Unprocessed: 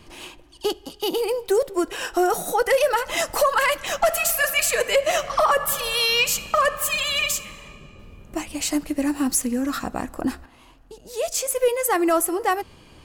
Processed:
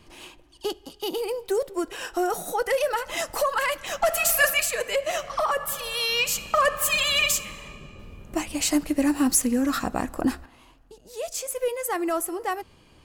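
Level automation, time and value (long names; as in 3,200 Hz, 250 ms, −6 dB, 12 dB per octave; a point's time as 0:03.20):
0:03.90 −5 dB
0:04.44 +2 dB
0:04.72 −6 dB
0:05.90 −6 dB
0:06.97 +1 dB
0:10.28 +1 dB
0:11.02 −6.5 dB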